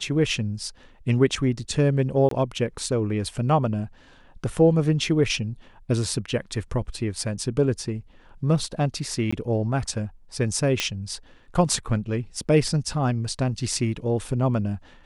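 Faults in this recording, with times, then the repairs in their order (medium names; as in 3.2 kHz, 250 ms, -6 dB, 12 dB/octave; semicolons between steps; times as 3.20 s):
2.29–2.31 s: dropout 23 ms
9.31–9.32 s: dropout 15 ms
10.80 s: pop -7 dBFS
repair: de-click; interpolate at 2.29 s, 23 ms; interpolate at 9.31 s, 15 ms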